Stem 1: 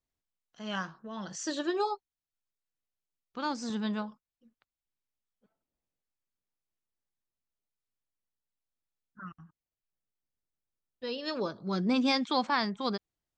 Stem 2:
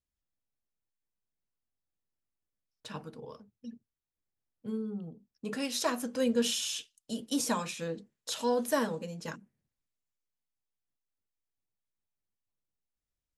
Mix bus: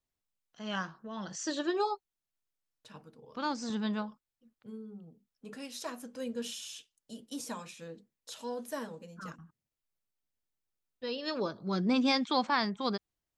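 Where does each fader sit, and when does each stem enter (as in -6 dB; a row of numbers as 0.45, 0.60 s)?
-0.5, -9.5 dB; 0.00, 0.00 s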